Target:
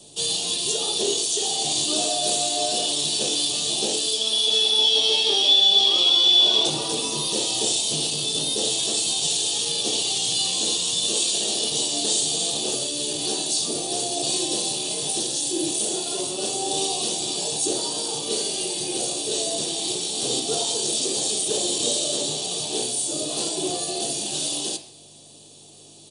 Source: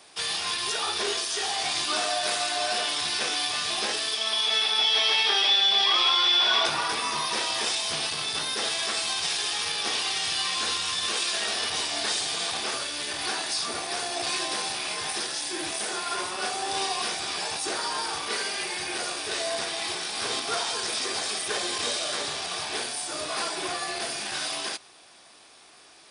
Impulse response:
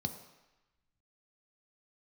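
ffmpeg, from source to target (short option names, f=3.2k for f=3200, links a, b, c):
-filter_complex "[0:a]aeval=exprs='val(0)+0.001*(sin(2*PI*50*n/s)+sin(2*PI*2*50*n/s)/2+sin(2*PI*3*50*n/s)/3+sin(2*PI*4*50*n/s)/4+sin(2*PI*5*50*n/s)/5)':c=same,firequalizer=gain_entry='entry(110,0);entry(200,-8);entry(630,-3);entry(1400,-28);entry(2800,1)':delay=0.05:min_phase=1[a];[1:a]atrim=start_sample=2205,asetrate=74970,aresample=44100[b];[a][b]afir=irnorm=-1:irlink=0,volume=8.5dB"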